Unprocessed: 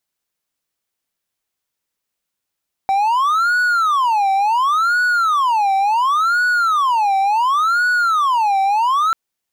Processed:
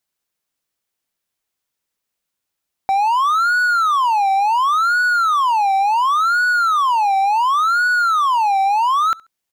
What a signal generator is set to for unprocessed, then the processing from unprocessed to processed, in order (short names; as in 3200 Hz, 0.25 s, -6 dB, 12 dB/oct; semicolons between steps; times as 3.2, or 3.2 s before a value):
siren wail 775–1470 Hz 0.7/s triangle -11 dBFS 6.24 s
feedback echo 68 ms, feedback 24%, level -23.5 dB